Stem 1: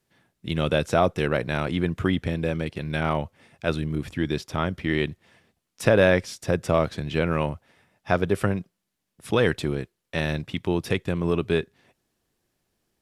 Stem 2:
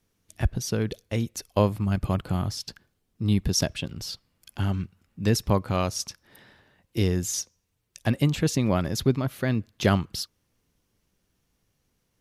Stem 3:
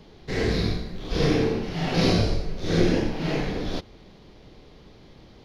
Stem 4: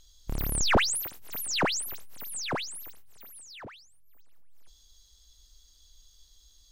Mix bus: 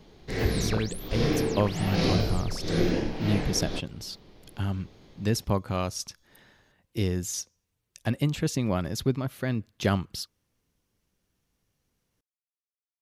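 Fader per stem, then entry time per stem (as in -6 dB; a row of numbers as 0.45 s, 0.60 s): mute, -3.5 dB, -4.0 dB, -13.5 dB; mute, 0.00 s, 0.00 s, 0.00 s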